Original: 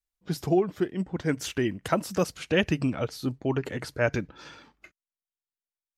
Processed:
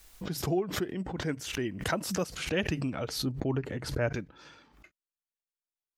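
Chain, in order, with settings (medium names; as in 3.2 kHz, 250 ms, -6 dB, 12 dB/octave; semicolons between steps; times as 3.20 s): 3.18–4.13 s: tilt EQ -1.5 dB/octave; swell ahead of each attack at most 70 dB/s; trim -6.5 dB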